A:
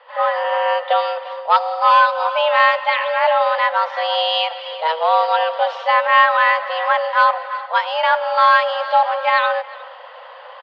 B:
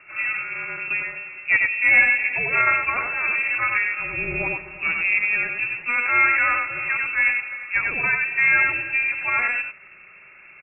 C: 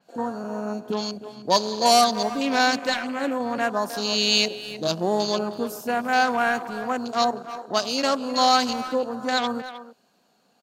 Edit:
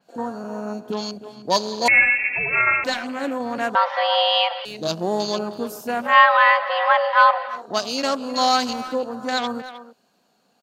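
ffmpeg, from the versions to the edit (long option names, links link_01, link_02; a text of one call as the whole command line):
ffmpeg -i take0.wav -i take1.wav -i take2.wav -filter_complex "[0:a]asplit=2[link_01][link_02];[2:a]asplit=4[link_03][link_04][link_05][link_06];[link_03]atrim=end=1.882[link_07];[1:a]atrim=start=1.878:end=2.842[link_08];[link_04]atrim=start=2.838:end=3.752[link_09];[link_01]atrim=start=3.748:end=4.652[link_10];[link_05]atrim=start=4.648:end=6.17[link_11];[link_02]atrim=start=6.01:end=7.62[link_12];[link_06]atrim=start=7.46[link_13];[link_07][link_08]acrossfade=duration=0.004:curve1=hsin:curve2=hsin[link_14];[link_14][link_09]acrossfade=duration=0.004:curve1=hsin:curve2=hsin[link_15];[link_15][link_10]acrossfade=duration=0.004:curve1=hsin:curve2=hsin[link_16];[link_16][link_11]acrossfade=duration=0.004:curve1=hsin:curve2=hsin[link_17];[link_17][link_12]acrossfade=duration=0.16:curve1=tri:curve2=tri[link_18];[link_18][link_13]acrossfade=duration=0.16:curve1=tri:curve2=tri" out.wav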